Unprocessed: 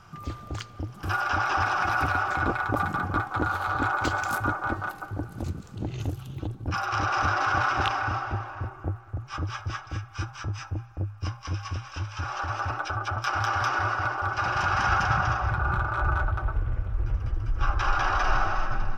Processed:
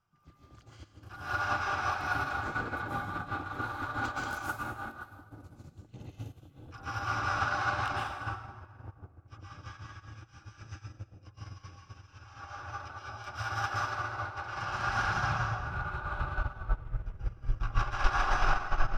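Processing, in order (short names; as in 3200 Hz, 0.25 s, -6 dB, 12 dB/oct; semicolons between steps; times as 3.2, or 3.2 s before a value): reverb removal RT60 0.81 s; soft clip -22 dBFS, distortion -15 dB; plate-style reverb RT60 1.4 s, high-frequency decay 1×, pre-delay 0.105 s, DRR -6.5 dB; upward expander 2.5:1, over -33 dBFS; gain -1.5 dB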